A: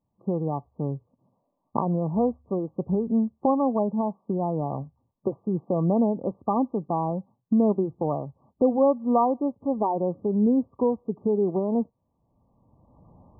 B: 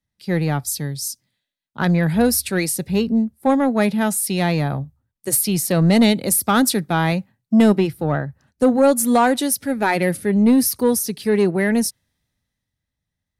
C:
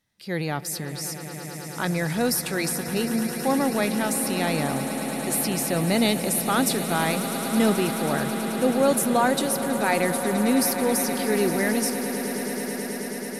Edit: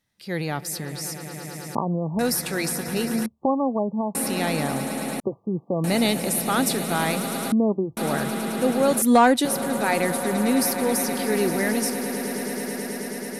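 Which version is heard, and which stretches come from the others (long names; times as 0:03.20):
C
0:01.75–0:02.19: punch in from A
0:03.26–0:04.15: punch in from A
0:05.20–0:05.84: punch in from A
0:07.52–0:07.97: punch in from A
0:09.02–0:09.45: punch in from B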